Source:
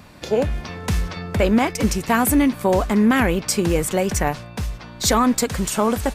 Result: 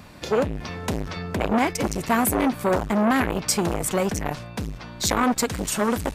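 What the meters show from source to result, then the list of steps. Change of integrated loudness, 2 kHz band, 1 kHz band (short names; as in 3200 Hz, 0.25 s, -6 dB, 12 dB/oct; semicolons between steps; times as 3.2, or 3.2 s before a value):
-4.0 dB, -3.0 dB, -2.0 dB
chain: core saturation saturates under 850 Hz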